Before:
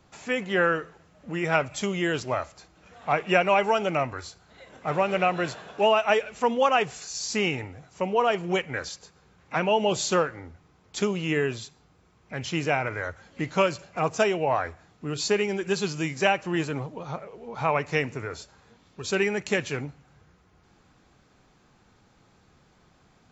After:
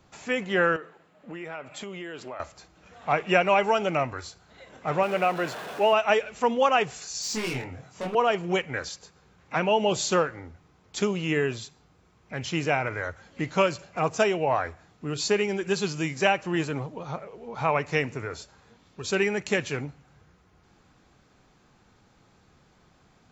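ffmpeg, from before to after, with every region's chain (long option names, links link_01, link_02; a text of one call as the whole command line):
ffmpeg -i in.wav -filter_complex "[0:a]asettb=1/sr,asplit=3[link_01][link_02][link_03];[link_01]atrim=end=0.764[link_04];[link_02]atrim=start=0.76:end=2.4,asetpts=PTS-STARTPTS,afade=type=in:duration=0.004:curve=qsin,afade=type=out:start_time=1.636:duration=0.004:curve=qsin,highpass=220,equalizer=frequency=5900:width=1.7:gain=-11,acompressor=threshold=-34dB:ratio=6:attack=3.2:release=140:knee=1:detection=peak[link_05];[link_03]atrim=start=2.396[link_06];[link_04][link_05]acrossfade=duration=0.004:curve1=hsin:curve2=qsin[link_07];[link_07][link_06]acrossfade=duration=0.004:curve1=qsin:curve2=hsin,asettb=1/sr,asplit=3[link_08][link_09][link_10];[link_08]atrim=end=5.034[link_11];[link_09]atrim=start=5.03:end=5.93,asetpts=PTS-STARTPTS,afade=type=in:duration=0.004:curve=qsin,afade=type=out:start_time=0.896:duration=0.004:curve=qsin,aeval=exprs='val(0)+0.5*0.0237*sgn(val(0))':channel_layout=same,highpass=frequency=290:poles=1,highshelf=frequency=3000:gain=-7.5[link_12];[link_10]atrim=start=5.926[link_13];[link_11][link_12]acrossfade=duration=0.004:curve1=hsin:curve2=qsin[link_14];[link_14][link_13]acrossfade=duration=0.004:curve1=qsin:curve2=hsin,asettb=1/sr,asplit=3[link_15][link_16][link_17];[link_15]atrim=end=7.224[link_18];[link_16]atrim=start=7.22:end=8.15,asetpts=PTS-STARTPTS,afade=type=in:duration=0.004:curve=qsin,afade=type=out:start_time=0.926:duration=0.004:curve=qsin,highpass=frequency=70:width=0.5412,highpass=frequency=70:width=1.3066,asoftclip=type=hard:threshold=-29dB,asplit=2[link_19][link_20];[link_20]adelay=23,volume=-2dB[link_21];[link_19][link_21]amix=inputs=2:normalize=0,atrim=end_sample=41013[link_22];[link_17]atrim=start=8.146[link_23];[link_18][link_22]acrossfade=duration=0.004:curve1=hsin:curve2=qsin[link_24];[link_24][link_23]acrossfade=duration=0.004:curve1=qsin:curve2=hsin" out.wav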